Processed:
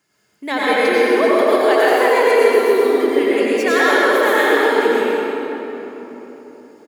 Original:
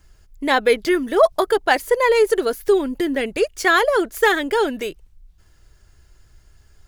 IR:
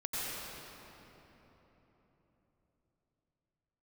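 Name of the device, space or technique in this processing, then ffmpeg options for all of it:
PA in a hall: -filter_complex "[0:a]highpass=f=170:w=0.5412,highpass=f=170:w=1.3066,equalizer=f=2.2k:t=o:w=0.25:g=4.5,aecho=1:1:128:0.447[a];[1:a]atrim=start_sample=2205[b];[a][b]afir=irnorm=-1:irlink=0,volume=-2.5dB"

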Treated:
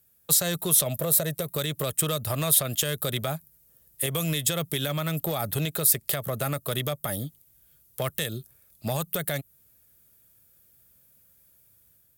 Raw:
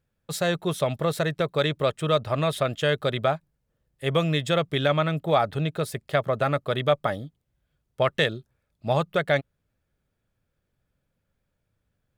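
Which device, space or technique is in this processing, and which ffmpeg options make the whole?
FM broadcast chain: -filter_complex "[0:a]asettb=1/sr,asplit=3[a][b][c];[a]atrim=end=0.864[d];[b]atrim=start=0.86:end=1.43,asetpts=PTS-STARTPTS,afade=t=in:d=0.004:c=qsin,afade=t=out:st=0.566:d=0.004:c=qsin,equalizer=f=590:t=o:w=0.52:g=10[e];[c]atrim=start=1.426[f];[d][e]acrossfade=d=0.004:c1=hsin:c2=qsin[g];[g][f]acrossfade=d=0.004:c1=qsin:c2=hsin,highpass=44,dynaudnorm=f=290:g=3:m=4dB,acrossover=split=260|7800[h][i][j];[h]acompressor=threshold=-27dB:ratio=4[k];[i]acompressor=threshold=-27dB:ratio=4[l];[j]acompressor=threshold=-44dB:ratio=4[m];[k][l][m]amix=inputs=3:normalize=0,aemphasis=mode=production:type=50fm,alimiter=limit=-19.5dB:level=0:latency=1:release=154,asoftclip=type=hard:threshold=-22dB,lowpass=f=15k:w=0.5412,lowpass=f=15k:w=1.3066,aemphasis=mode=production:type=50fm,volume=1.5dB"

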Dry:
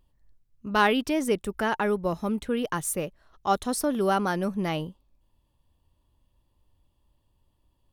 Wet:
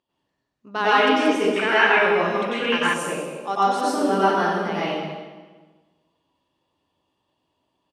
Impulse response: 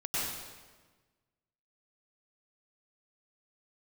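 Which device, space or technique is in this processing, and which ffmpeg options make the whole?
supermarket ceiling speaker: -filter_complex "[0:a]highpass=310,lowpass=5.8k[a];[1:a]atrim=start_sample=2205[b];[a][b]afir=irnorm=-1:irlink=0,asettb=1/sr,asplit=3[c][d][e];[c]atrim=end=1.564[f];[d]atrim=start=1.56:end=2.94,asetpts=PTS-STARTPTS,afade=t=in:d=0.004:c=qsin,afade=t=out:st=1.376:d=0.004:c=qsin,equalizer=f=2.3k:t=o:w=1.1:g=14.5[g];[e]atrim=start=2.936[h];[f][g]acrossfade=d=0.004:c1=hsin:c2=qsin[i];[i][h]acrossfade=d=0.004:c1=qsin:c2=hsin,asplit=2[j][k];[k]adelay=198.3,volume=-12dB,highshelf=f=4k:g=-4.46[l];[j][l]amix=inputs=2:normalize=0"

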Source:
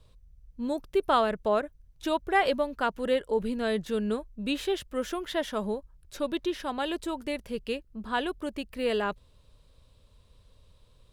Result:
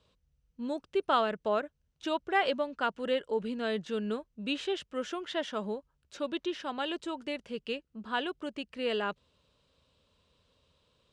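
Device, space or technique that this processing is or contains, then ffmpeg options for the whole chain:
car door speaker: -af "highpass=110,equalizer=f=110:t=q:w=4:g=-9,equalizer=f=1.4k:t=q:w=4:g=3,equalizer=f=2.9k:t=q:w=4:g=5,lowpass=f=7.7k:w=0.5412,lowpass=f=7.7k:w=1.3066,volume=-4dB"

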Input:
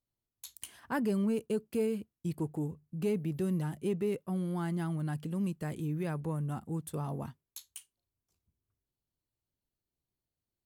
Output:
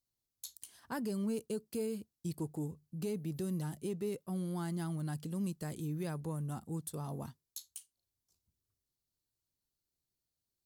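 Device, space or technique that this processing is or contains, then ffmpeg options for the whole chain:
over-bright horn tweeter: -af "highshelf=f=3.4k:t=q:w=1.5:g=7,alimiter=level_in=1dB:limit=-24dB:level=0:latency=1:release=309,volume=-1dB,volume=-3.5dB"

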